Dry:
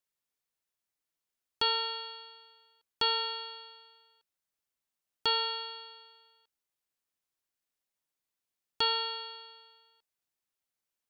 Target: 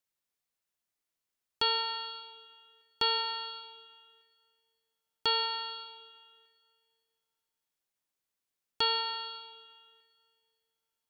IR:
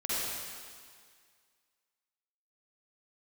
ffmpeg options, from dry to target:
-filter_complex "[0:a]asplit=2[a][b];[1:a]atrim=start_sample=2205,highshelf=f=5.3k:g=-7.5,adelay=95[c];[b][c]afir=irnorm=-1:irlink=0,volume=-18.5dB[d];[a][d]amix=inputs=2:normalize=0"

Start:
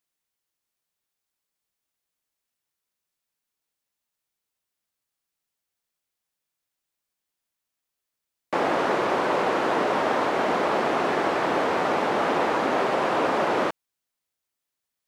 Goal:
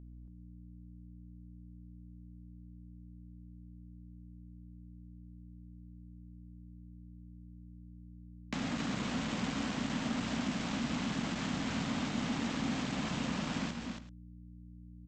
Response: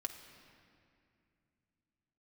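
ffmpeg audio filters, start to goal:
-af "firequalizer=gain_entry='entry(250,0);entry(360,-26);entry(3100,-9);entry(5100,-12)':delay=0.05:min_phase=1,acompressor=mode=upward:threshold=-30dB:ratio=2.5,aresample=16000,aeval=exprs='val(0)*gte(abs(val(0)),0.0133)':c=same,aresample=44100,aeval=exprs='val(0)+0.00355*(sin(2*PI*60*n/s)+sin(2*PI*2*60*n/s)/2+sin(2*PI*3*60*n/s)/3+sin(2*PI*4*60*n/s)/4+sin(2*PI*5*60*n/s)/5)':c=same,asoftclip=type=tanh:threshold=-24.5dB,aecho=1:1:131|255|277|384:0.15|0.266|0.473|0.112"

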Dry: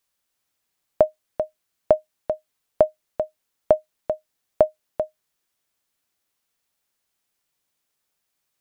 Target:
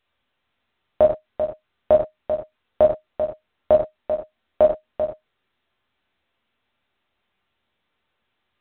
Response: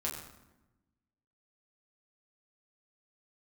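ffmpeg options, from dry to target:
-filter_complex "[0:a]asettb=1/sr,asplit=3[a][b][c];[a]atrim=end=3.724[d];[b]atrim=start=3.72:end=4.62,asetpts=PTS-STARTPTS,afade=t=in:d=0.004:c=qsin,afade=t=out:st=0.896:d=0.004:c=qsin,equalizer=f=110:w=4.4:g=-14.5[e];[c]atrim=start=4.616[f];[d][e]acrossfade=d=0.004:c1=hsin:c2=qsin[g];[g][f]acrossfade=d=0.004:c1=qsin:c2=hsin[h];[1:a]atrim=start_sample=2205,afade=t=out:st=0.18:d=0.01,atrim=end_sample=8379[i];[h][i]afir=irnorm=-1:irlink=0" -ar 8000 -c:a pcm_mulaw

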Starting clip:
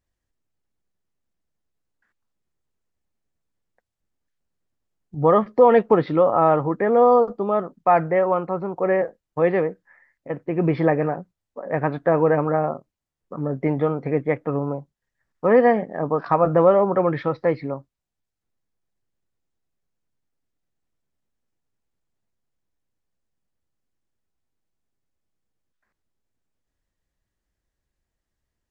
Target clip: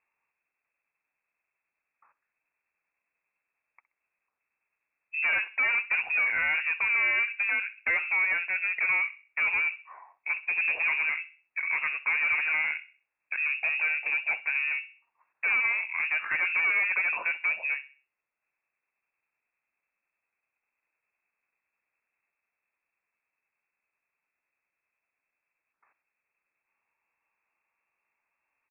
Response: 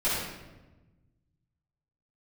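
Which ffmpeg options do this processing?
-filter_complex "[0:a]highpass=200,acompressor=threshold=-35dB:ratio=2,asoftclip=type=tanh:threshold=-29.5dB,asplit=2[a][b];[b]adelay=64,lowpass=f=1.4k:p=1,volume=-15dB,asplit=2[c][d];[d]adelay=64,lowpass=f=1.4k:p=1,volume=0.4,asplit=2[e][f];[f]adelay=64,lowpass=f=1.4k:p=1,volume=0.4,asplit=2[g][h];[h]adelay=64,lowpass=f=1.4k:p=1,volume=0.4[i];[c][e][g][i]amix=inputs=4:normalize=0[j];[a][j]amix=inputs=2:normalize=0,lowpass=f=2.4k:t=q:w=0.5098,lowpass=f=2.4k:t=q:w=0.6013,lowpass=f=2.4k:t=q:w=0.9,lowpass=f=2.4k:t=q:w=2.563,afreqshift=-2800,volume=7dB"

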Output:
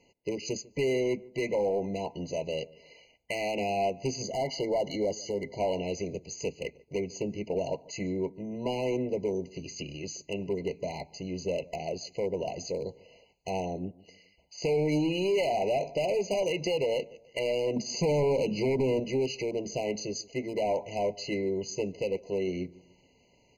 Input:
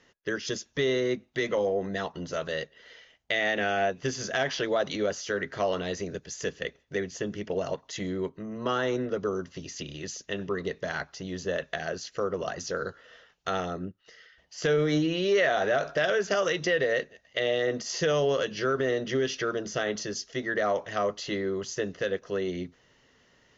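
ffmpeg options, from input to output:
-filter_complex "[0:a]asettb=1/sr,asplit=3[a][b][c];[a]atrim=end=17.764[d];[b]atrim=start=17.76:end=19,asetpts=PTS-STARTPTS,afade=t=in:d=0.004:c=qsin,afade=t=out:st=1.236:d=0.004:c=qsin,equalizer=f=190:w=0.7:g=10[e];[c]atrim=start=18.996[f];[d][e]acrossfade=d=0.004:c1=hsin:c2=qsin[g];[g][f]acrossfade=d=0.004:c1=qsin:c2=hsin,asoftclip=type=hard:threshold=-23dB,asettb=1/sr,asplit=3[h][i][j];[h]atrim=end=4.224[k];[i]atrim=start=4.22:end=5.58,asetpts=PTS-STARTPTS,afade=t=in:d=0.004:c=qsin,afade=t=out:st=1.356:d=0.004:c=qsin,asuperstop=centerf=2500:order=8:qfactor=4.4[l];[j]atrim=start=5.576[m];[k][l]acrossfade=d=0.004:c1=hsin:c2=qsin[n];[n][m]acrossfade=d=0.004:c1=qsin:c2=hsin,asplit=2[o][p];[p]adelay=146,lowpass=f=950:p=1,volume=-21dB,asplit=2[q][r];[r]adelay=146,lowpass=f=950:p=1,volume=0.42,asplit=2[s][t];[t]adelay=146,lowpass=f=950:p=1,volume=0.42[u];[o][q][s][u]amix=inputs=4:normalize=0,afftfilt=real='re*eq(mod(floor(b*sr/1024/1000),2),0)':imag='im*eq(mod(floor(b*sr/1024/1000),2),0)':win_size=1024:overlap=0.75"

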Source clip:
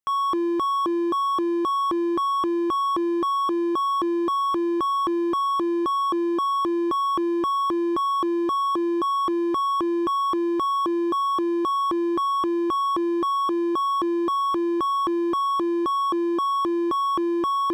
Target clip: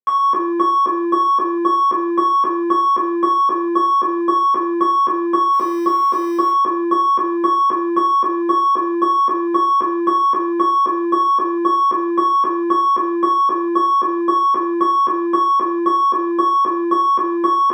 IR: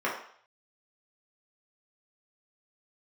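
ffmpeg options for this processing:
-filter_complex "[0:a]adynamicsmooth=sensitivity=6:basefreq=590,asettb=1/sr,asplit=3[a][b][c];[a]atrim=end=5.534[d];[b]atrim=start=5.53:end=6.52,asetpts=PTS-STARTPTS,afade=t=in:d=0.004:c=qsin,afade=t=out:st=0.986:d=0.004:c=qsin,acrusher=bits=4:mode=log:mix=0:aa=0.000001[e];[c]atrim=start=6.516[f];[d][e]acrossfade=d=0.004:c1=hsin:c2=qsin[g];[g][f]acrossfade=d=0.004:c1=qsin:c2=hsin[h];[1:a]atrim=start_sample=2205,afade=t=out:st=0.25:d=0.01,atrim=end_sample=11466[i];[h][i]afir=irnorm=-1:irlink=0,volume=-3dB"

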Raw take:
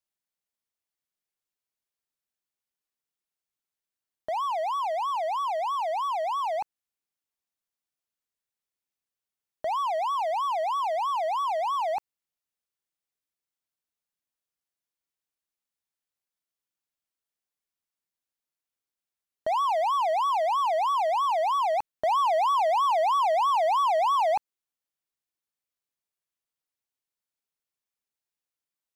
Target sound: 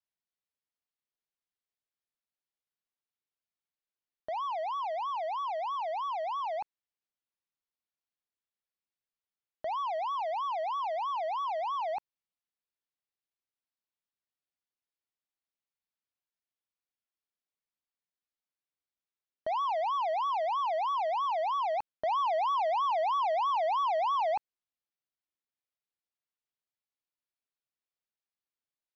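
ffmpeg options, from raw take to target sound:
-af "lowpass=f=5k:w=0.5412,lowpass=f=5k:w=1.3066,volume=-5.5dB"

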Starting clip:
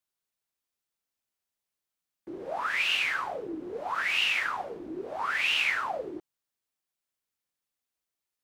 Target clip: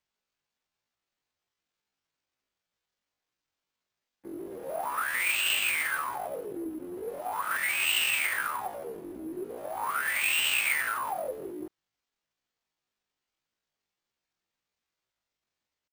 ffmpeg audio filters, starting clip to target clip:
-af "acrusher=samples=4:mix=1:aa=0.000001,atempo=0.53"

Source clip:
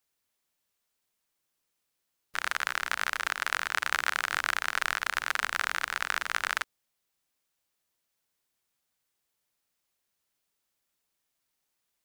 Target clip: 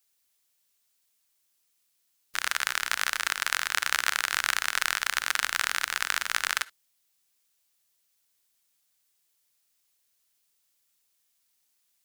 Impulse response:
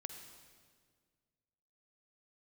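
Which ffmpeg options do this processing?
-filter_complex "[0:a]highshelf=f=2.3k:g=12,asplit=2[a][b];[1:a]atrim=start_sample=2205,atrim=end_sample=3528[c];[b][c]afir=irnorm=-1:irlink=0,volume=-1.5dB[d];[a][d]amix=inputs=2:normalize=0,volume=-6.5dB"

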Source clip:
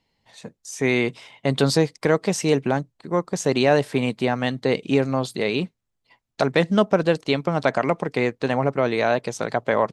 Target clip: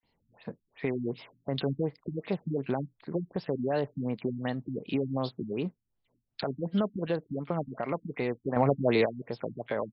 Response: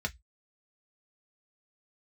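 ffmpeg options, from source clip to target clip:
-filter_complex "[0:a]alimiter=limit=-17dB:level=0:latency=1:release=330,acrossover=split=1800[a][b];[a]adelay=30[c];[c][b]amix=inputs=2:normalize=0,asettb=1/sr,asplit=3[d][e][f];[d]atrim=end=8.564[g];[e]atrim=start=8.56:end=9.06,asetpts=PTS-STARTPTS,afade=t=in:d=0.004:c=qsin,afade=t=out:st=0.496:d=0.004:c=qsin,acontrast=81[h];[f]atrim=start=9.056[i];[g][h]acrossfade=d=0.004:c1=hsin:c2=qsin[j];[j][i]acrossfade=d=0.004:c1=qsin:c2=hsin,afftfilt=real='re*lt(b*sr/1024,280*pow(5500/280,0.5+0.5*sin(2*PI*2.7*pts/sr)))':imag='im*lt(b*sr/1024,280*pow(5500/280,0.5+0.5*sin(2*PI*2.7*pts/sr)))':win_size=1024:overlap=0.75,volume=-1.5dB"

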